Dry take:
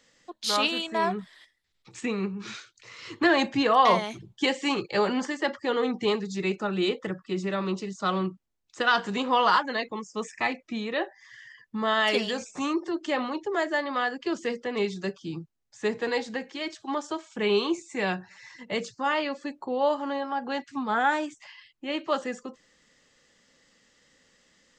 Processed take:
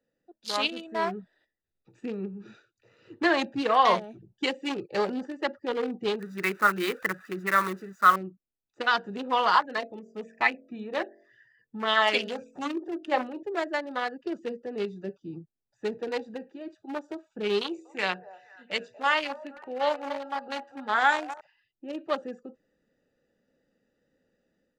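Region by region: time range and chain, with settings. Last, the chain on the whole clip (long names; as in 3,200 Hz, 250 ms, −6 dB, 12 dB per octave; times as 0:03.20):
0:06.19–0:08.16: spike at every zero crossing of −25.5 dBFS + flat-topped bell 1,500 Hz +14.5 dB 1.2 octaves
0:09.55–0:13.43: hum removal 45.31 Hz, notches 15 + auto-filter bell 3.6 Hz 690–3,200 Hz +9 dB
0:17.61–0:21.41: tilt shelving filter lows −6.5 dB, about 660 Hz + hum removal 80.96 Hz, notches 9 + echo through a band-pass that steps 240 ms, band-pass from 820 Hz, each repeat 0.7 octaves, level −7 dB
whole clip: adaptive Wiener filter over 41 samples; low-shelf EQ 260 Hz −9.5 dB; automatic gain control gain up to 7 dB; level −5.5 dB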